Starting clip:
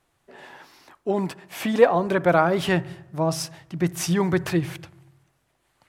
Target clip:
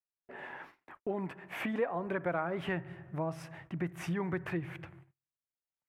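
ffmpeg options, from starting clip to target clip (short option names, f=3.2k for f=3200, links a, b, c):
-af "highshelf=f=3.2k:t=q:w=1.5:g=-13.5,agate=range=-38dB:threshold=-50dB:ratio=16:detection=peak,acompressor=threshold=-35dB:ratio=2.5,volume=-2dB"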